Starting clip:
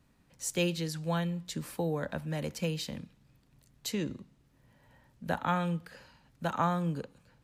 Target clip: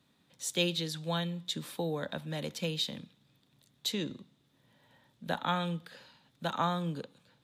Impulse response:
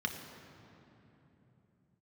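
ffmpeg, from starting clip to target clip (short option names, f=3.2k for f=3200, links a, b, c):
-af "highpass=140,equalizer=f=3.6k:w=4.1:g=14,volume=-1.5dB"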